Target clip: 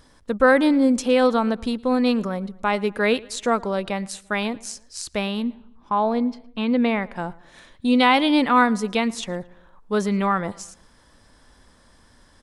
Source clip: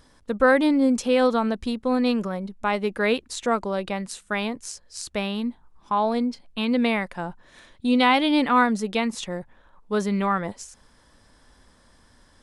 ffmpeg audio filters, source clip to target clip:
-filter_complex "[0:a]asettb=1/sr,asplit=3[s0][s1][s2];[s0]atrim=end=5.424[s3];[s1]atrim=start=5.42:end=7.16,asetpts=PTS-STARTPTS,afade=t=in:d=0.004:c=qsin,afade=t=out:st=1.736:d=0.004:c=qsin,aemphasis=mode=reproduction:type=75kf[s4];[s2]atrim=start=7.156[s5];[s3][s4]acrossfade=d=0.004:c1=hsin:c2=qsin[s6];[s6][s5]acrossfade=d=0.004:c1=qsin:c2=hsin,asplit=2[s7][s8];[s8]adelay=113,lowpass=f=3500:p=1,volume=0.075,asplit=2[s9][s10];[s10]adelay=113,lowpass=f=3500:p=1,volume=0.5,asplit=2[s11][s12];[s12]adelay=113,lowpass=f=3500:p=1,volume=0.5[s13];[s7][s9][s11][s13]amix=inputs=4:normalize=0,volume=1.26"

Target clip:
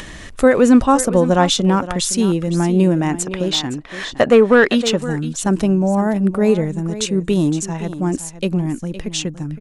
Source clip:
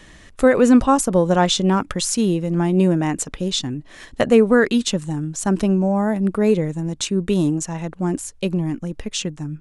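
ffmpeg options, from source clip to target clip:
-filter_complex "[0:a]acompressor=mode=upward:threshold=0.0447:ratio=2.5,aecho=1:1:514:0.211,asettb=1/sr,asplit=3[s0][s1][s2];[s0]atrim=end=3.254[s3];[s1]atrim=start=3.25:end=5.02,asetpts=PTS-STARTPTS,afade=t=in:d=0.004:c=qsin,afade=t=out:st=1.766:d=0.004:c=qsin,asplit=2[s4][s5];[s5]highpass=f=720:p=1,volume=4.47,asoftclip=type=tanh:threshold=0.75[s6];[s4][s6]amix=inputs=2:normalize=0,lowpass=f=2400:p=1,volume=0.501[s7];[s2]atrim=start=5.016[s8];[s3][s7]acrossfade=d=0.004:c1=hsin:c2=qsin[s9];[s9][s8]acrossfade=d=0.004:c1=qsin:c2=hsin,volume=1.26"

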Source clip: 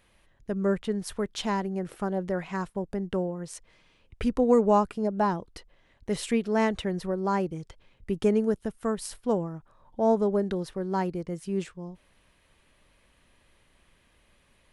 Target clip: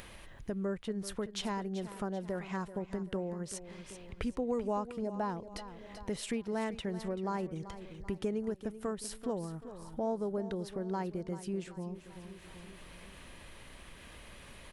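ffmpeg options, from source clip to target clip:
-filter_complex "[0:a]acompressor=threshold=0.00891:ratio=2.5,asplit=2[s0][s1];[s1]aecho=0:1:386|772|1158|1544:0.211|0.0951|0.0428|0.0193[s2];[s0][s2]amix=inputs=2:normalize=0,acompressor=mode=upward:threshold=0.00708:ratio=2.5,volume=1.33"

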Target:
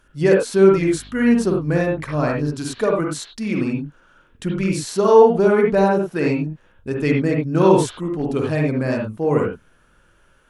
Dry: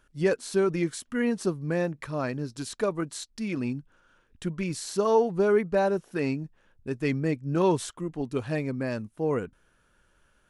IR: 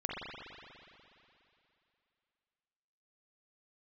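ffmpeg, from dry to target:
-filter_complex "[1:a]atrim=start_sample=2205,atrim=end_sample=3969,asetrate=38808,aresample=44100[s0];[0:a][s0]afir=irnorm=-1:irlink=0,asettb=1/sr,asplit=3[s1][s2][s3];[s1]atrim=end=0.734[s4];[s2]atrim=start=0.73:end=2.54,asetpts=PTS-STARTPTS,afade=t=in:d=0.004:c=qsin,afade=t=out:st=1.806:d=0.004:c=qsin,aeval=exprs='val(0)+0.00355*(sin(2*PI*50*n/s)+sin(2*PI*2*50*n/s)/2+sin(2*PI*3*50*n/s)/3+sin(2*PI*4*50*n/s)/4+sin(2*PI*5*50*n/s)/5)':c=same[s5];[s3]atrim=start=2.536[s6];[s4][s5]acrossfade=d=0.004:c1=hsin:c2=qsin[s7];[s7][s6]acrossfade=d=0.004:c1=qsin:c2=hsin,volume=2.24"

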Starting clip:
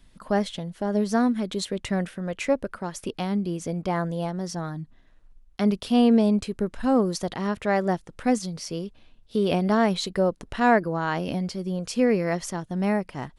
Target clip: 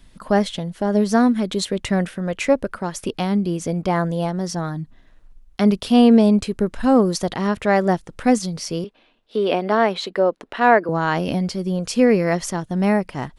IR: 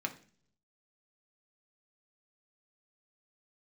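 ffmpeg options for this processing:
-filter_complex "[0:a]asettb=1/sr,asplit=3[s0][s1][s2];[s0]atrim=end=8.844[s3];[s1]atrim=start=8.84:end=10.89,asetpts=PTS-STARTPTS,afade=t=in:d=0.004:c=qsin,afade=t=out:st=2.046:d=0.004:c=qsin,acrossover=split=260 4000:gain=0.0708 1 0.224[s4][s5][s6];[s4][s5][s6]amix=inputs=3:normalize=0[s7];[s2]atrim=start=10.886[s8];[s3][s7]acrossfade=d=0.004:c1=hsin:c2=qsin[s9];[s9][s8]acrossfade=d=0.004:c1=qsin:c2=hsin,volume=2"

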